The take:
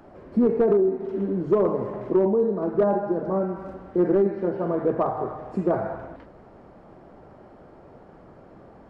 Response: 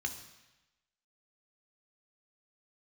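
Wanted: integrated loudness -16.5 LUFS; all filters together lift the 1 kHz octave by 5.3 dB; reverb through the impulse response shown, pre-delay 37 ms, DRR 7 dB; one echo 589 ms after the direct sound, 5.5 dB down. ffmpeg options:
-filter_complex "[0:a]equalizer=f=1000:t=o:g=7,aecho=1:1:589:0.531,asplit=2[s0][s1];[1:a]atrim=start_sample=2205,adelay=37[s2];[s1][s2]afir=irnorm=-1:irlink=0,volume=0.355[s3];[s0][s3]amix=inputs=2:normalize=0,volume=1.88"

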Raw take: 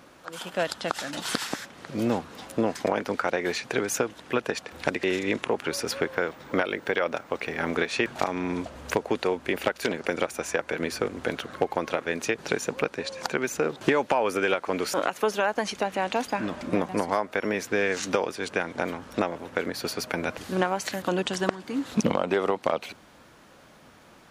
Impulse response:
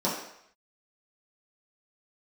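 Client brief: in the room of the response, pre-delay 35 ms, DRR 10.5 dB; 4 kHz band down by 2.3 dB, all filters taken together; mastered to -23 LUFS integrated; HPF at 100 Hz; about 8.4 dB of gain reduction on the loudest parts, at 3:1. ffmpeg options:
-filter_complex "[0:a]highpass=100,equalizer=f=4000:t=o:g=-3,acompressor=threshold=0.0251:ratio=3,asplit=2[s0][s1];[1:a]atrim=start_sample=2205,adelay=35[s2];[s1][s2]afir=irnorm=-1:irlink=0,volume=0.0841[s3];[s0][s3]amix=inputs=2:normalize=0,volume=3.98"

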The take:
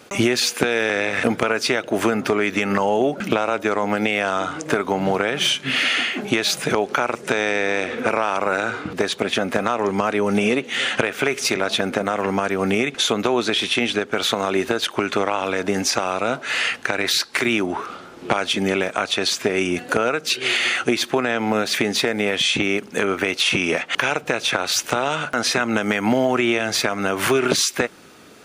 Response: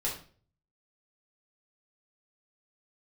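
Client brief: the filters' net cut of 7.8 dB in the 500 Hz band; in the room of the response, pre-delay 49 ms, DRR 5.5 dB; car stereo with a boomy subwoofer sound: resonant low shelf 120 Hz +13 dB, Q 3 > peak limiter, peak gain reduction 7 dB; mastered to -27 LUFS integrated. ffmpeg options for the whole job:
-filter_complex "[0:a]equalizer=f=500:t=o:g=-9,asplit=2[s0][s1];[1:a]atrim=start_sample=2205,adelay=49[s2];[s1][s2]afir=irnorm=-1:irlink=0,volume=0.299[s3];[s0][s3]amix=inputs=2:normalize=0,lowshelf=f=120:t=q:w=3:g=13,volume=0.562,alimiter=limit=0.168:level=0:latency=1"

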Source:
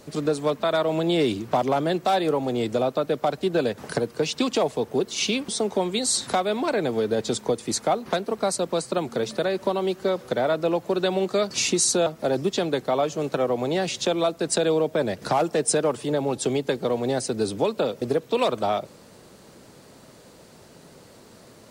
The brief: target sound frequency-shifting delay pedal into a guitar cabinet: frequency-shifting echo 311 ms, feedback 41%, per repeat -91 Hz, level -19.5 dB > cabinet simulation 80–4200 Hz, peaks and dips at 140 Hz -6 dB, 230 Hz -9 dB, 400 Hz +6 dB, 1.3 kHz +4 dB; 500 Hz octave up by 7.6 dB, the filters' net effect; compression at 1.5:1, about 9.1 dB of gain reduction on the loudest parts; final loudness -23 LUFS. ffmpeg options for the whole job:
-filter_complex "[0:a]equalizer=f=500:t=o:g=6.5,acompressor=threshold=0.0112:ratio=1.5,asplit=4[s0][s1][s2][s3];[s1]adelay=311,afreqshift=-91,volume=0.106[s4];[s2]adelay=622,afreqshift=-182,volume=0.0437[s5];[s3]adelay=933,afreqshift=-273,volume=0.0178[s6];[s0][s4][s5][s6]amix=inputs=4:normalize=0,highpass=80,equalizer=f=140:t=q:w=4:g=-6,equalizer=f=230:t=q:w=4:g=-9,equalizer=f=400:t=q:w=4:g=6,equalizer=f=1300:t=q:w=4:g=4,lowpass=f=4200:w=0.5412,lowpass=f=4200:w=1.3066,volume=1.68"

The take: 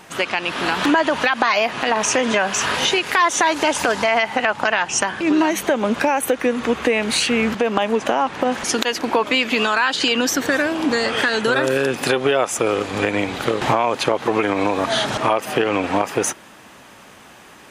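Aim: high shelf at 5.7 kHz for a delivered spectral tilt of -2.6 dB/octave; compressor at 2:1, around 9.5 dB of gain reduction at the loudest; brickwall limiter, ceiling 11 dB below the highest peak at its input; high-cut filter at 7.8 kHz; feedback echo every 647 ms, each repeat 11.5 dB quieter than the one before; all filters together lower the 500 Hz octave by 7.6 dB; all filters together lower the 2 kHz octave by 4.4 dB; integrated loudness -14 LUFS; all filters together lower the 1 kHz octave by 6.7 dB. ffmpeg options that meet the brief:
-af "lowpass=7800,equalizer=f=500:t=o:g=-8,equalizer=f=1000:t=o:g=-5,equalizer=f=2000:t=o:g=-4.5,highshelf=f=5700:g=7,acompressor=threshold=0.02:ratio=2,alimiter=limit=0.0891:level=0:latency=1,aecho=1:1:647|1294|1941:0.266|0.0718|0.0194,volume=7.5"

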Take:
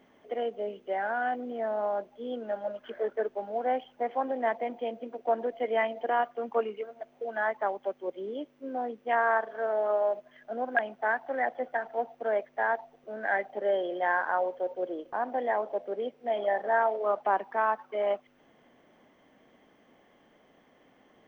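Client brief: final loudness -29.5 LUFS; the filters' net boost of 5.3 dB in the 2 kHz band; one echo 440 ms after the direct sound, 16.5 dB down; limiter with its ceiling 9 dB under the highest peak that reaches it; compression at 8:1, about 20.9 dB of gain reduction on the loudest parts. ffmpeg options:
-af "equalizer=f=2000:t=o:g=7,acompressor=threshold=0.01:ratio=8,alimiter=level_in=3.35:limit=0.0631:level=0:latency=1,volume=0.299,aecho=1:1:440:0.15,volume=5.96"

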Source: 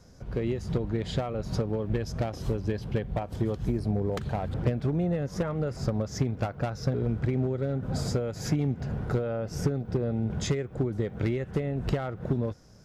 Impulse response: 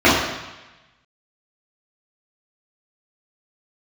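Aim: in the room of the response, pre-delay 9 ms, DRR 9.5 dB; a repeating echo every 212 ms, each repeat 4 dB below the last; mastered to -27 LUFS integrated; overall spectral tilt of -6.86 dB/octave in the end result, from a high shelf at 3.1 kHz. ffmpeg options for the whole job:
-filter_complex "[0:a]highshelf=f=3100:g=6.5,aecho=1:1:212|424|636|848|1060|1272|1484|1696|1908:0.631|0.398|0.25|0.158|0.0994|0.0626|0.0394|0.0249|0.0157,asplit=2[s0][s1];[1:a]atrim=start_sample=2205,adelay=9[s2];[s1][s2]afir=irnorm=-1:irlink=0,volume=0.0133[s3];[s0][s3]amix=inputs=2:normalize=0,volume=1.06"

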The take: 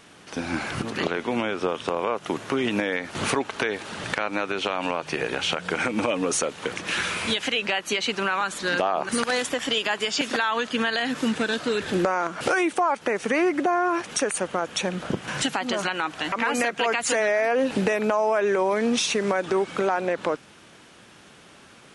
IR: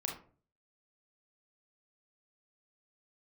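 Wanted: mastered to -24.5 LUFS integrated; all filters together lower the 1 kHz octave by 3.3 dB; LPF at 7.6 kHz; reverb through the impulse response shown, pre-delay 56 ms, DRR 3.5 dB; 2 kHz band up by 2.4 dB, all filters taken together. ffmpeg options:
-filter_complex "[0:a]lowpass=7600,equalizer=f=1000:t=o:g=-6,equalizer=f=2000:t=o:g=5,asplit=2[s0][s1];[1:a]atrim=start_sample=2205,adelay=56[s2];[s1][s2]afir=irnorm=-1:irlink=0,volume=0.562[s3];[s0][s3]amix=inputs=2:normalize=0,volume=0.891"

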